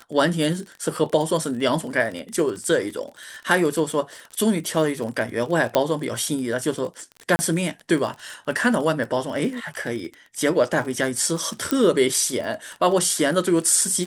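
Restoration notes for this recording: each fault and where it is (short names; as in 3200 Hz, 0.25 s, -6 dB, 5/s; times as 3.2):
crackle 35/s -29 dBFS
5.75 pop -6 dBFS
7.36–7.39 gap 30 ms
11.71 pop -6 dBFS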